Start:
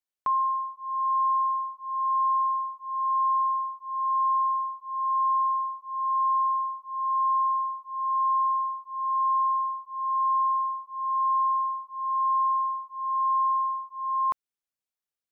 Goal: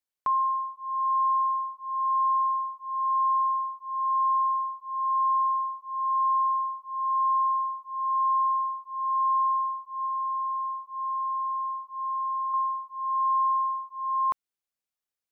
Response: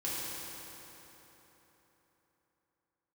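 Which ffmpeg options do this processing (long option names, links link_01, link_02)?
-filter_complex "[0:a]asettb=1/sr,asplit=3[link_01][link_02][link_03];[link_01]atrim=end=10.054[link_04];[link_02]atrim=start=10.05:end=12.54,asetpts=PTS-STARTPTS,afade=type=in:duration=0.004:curve=qsin,afade=type=out:start_time=2.486:duration=0.004:curve=qsin,acompressor=threshold=-28dB:ratio=6[link_05];[link_03]atrim=start=12.536[link_06];[link_04][link_05]acrossfade=duration=0.004:curve1=hsin:curve2=qsin[link_07];[link_07][link_06]acrossfade=duration=0.004:curve1=qsin:curve2=hsin"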